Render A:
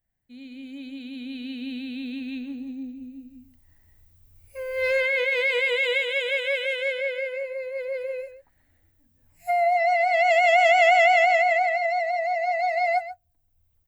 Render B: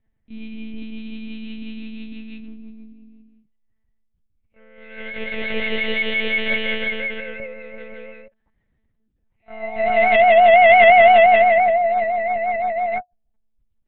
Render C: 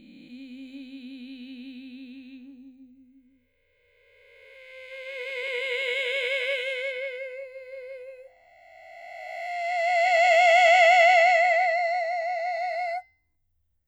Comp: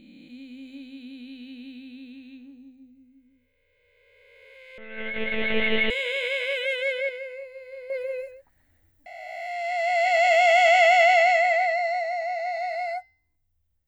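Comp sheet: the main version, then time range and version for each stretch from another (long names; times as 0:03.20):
C
0:04.78–0:05.90: punch in from B
0:06.56–0:07.09: punch in from A
0:07.90–0:09.06: punch in from A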